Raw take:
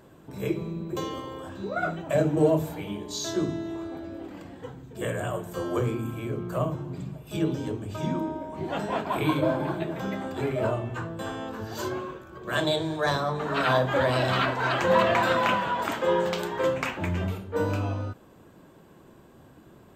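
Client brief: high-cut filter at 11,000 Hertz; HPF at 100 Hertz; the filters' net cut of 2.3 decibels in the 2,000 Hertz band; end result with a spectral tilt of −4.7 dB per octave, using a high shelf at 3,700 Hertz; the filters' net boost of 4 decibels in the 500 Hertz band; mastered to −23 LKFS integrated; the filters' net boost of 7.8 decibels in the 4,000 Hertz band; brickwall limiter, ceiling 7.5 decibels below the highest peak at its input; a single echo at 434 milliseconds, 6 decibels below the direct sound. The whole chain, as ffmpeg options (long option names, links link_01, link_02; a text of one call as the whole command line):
ffmpeg -i in.wav -af "highpass=100,lowpass=11000,equalizer=frequency=500:width_type=o:gain=5,equalizer=frequency=2000:width_type=o:gain=-7,highshelf=frequency=3700:gain=5.5,equalizer=frequency=4000:width_type=o:gain=8.5,alimiter=limit=-14.5dB:level=0:latency=1,aecho=1:1:434:0.501,volume=3dB" out.wav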